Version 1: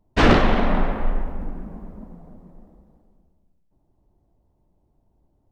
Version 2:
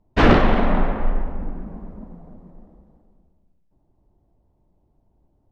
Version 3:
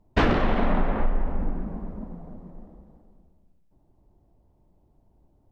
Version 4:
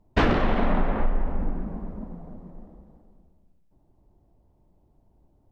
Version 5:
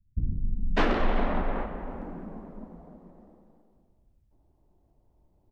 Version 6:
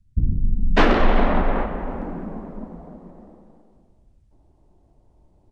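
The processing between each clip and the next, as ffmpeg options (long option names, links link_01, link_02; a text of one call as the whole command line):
ffmpeg -i in.wav -af "lowpass=frequency=2900:poles=1,volume=1.5dB" out.wav
ffmpeg -i in.wav -af "acompressor=threshold=-18dB:ratio=12,volume=1.5dB" out.wav
ffmpeg -i in.wav -af anull out.wav
ffmpeg -i in.wav -filter_complex "[0:a]acrossover=split=170[link_01][link_02];[link_02]adelay=600[link_03];[link_01][link_03]amix=inputs=2:normalize=0,volume=-3dB" out.wav
ffmpeg -i in.wav -af "aresample=22050,aresample=44100,volume=8.5dB" out.wav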